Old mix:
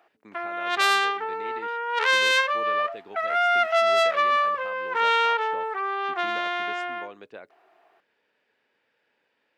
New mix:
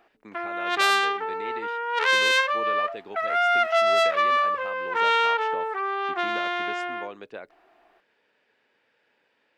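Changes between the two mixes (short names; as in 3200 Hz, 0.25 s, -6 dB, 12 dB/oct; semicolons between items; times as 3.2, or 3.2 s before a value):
speech +3.5 dB; background: remove HPF 360 Hz 24 dB/oct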